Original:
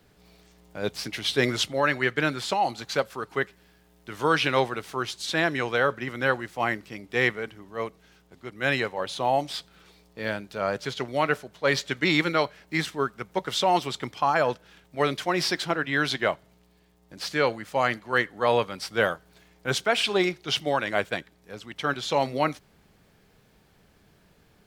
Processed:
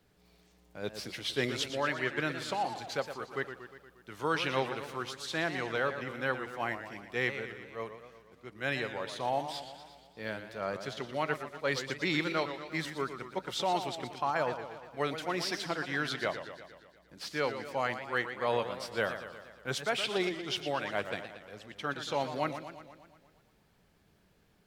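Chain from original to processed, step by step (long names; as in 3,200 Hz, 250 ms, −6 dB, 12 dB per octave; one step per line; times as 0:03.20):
feedback echo with a swinging delay time 118 ms, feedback 61%, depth 159 cents, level −10 dB
level −8.5 dB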